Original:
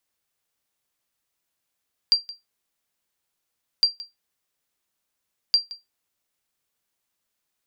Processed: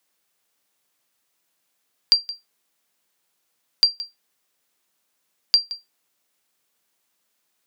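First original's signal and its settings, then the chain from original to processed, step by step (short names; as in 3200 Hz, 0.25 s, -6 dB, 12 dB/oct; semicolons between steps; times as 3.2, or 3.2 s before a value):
sonar ping 4730 Hz, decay 0.18 s, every 1.71 s, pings 3, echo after 0.17 s, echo -19 dB -9 dBFS
HPF 160 Hz 12 dB/oct; in parallel at +2 dB: compressor, threshold -26 dBFS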